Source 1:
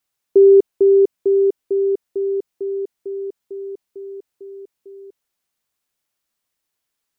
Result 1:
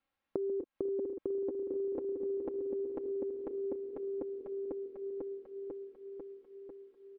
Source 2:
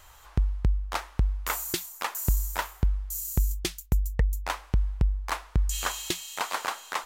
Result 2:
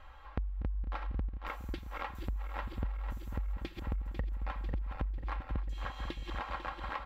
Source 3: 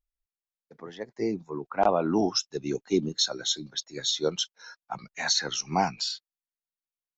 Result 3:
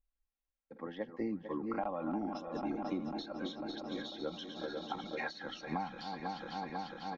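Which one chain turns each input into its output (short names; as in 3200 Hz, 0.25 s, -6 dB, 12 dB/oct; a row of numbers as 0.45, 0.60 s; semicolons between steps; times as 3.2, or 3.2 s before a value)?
regenerating reverse delay 0.248 s, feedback 82%, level -10 dB; comb 3.7 ms, depth 64%; dynamic EQ 420 Hz, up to -7 dB, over -37 dBFS, Q 2.2; compressor 12:1, threshold -32 dBFS; air absorption 400 m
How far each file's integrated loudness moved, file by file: -21.5, -10.0, -12.5 LU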